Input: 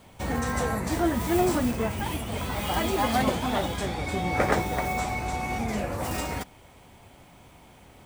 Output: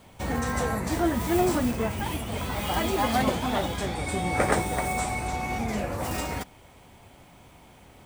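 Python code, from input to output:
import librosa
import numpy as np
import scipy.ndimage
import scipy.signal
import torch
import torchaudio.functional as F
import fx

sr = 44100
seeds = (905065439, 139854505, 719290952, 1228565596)

y = fx.peak_eq(x, sr, hz=8700.0, db=12.5, octaves=0.29, at=(3.95, 5.28))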